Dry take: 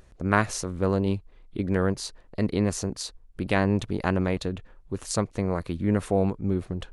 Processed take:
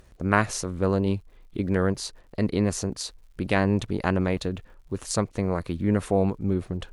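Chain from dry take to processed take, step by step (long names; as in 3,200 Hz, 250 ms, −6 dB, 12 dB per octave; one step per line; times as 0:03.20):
harmonic generator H 2 −22 dB, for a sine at −5.5 dBFS
surface crackle 150 per second −54 dBFS
level +1 dB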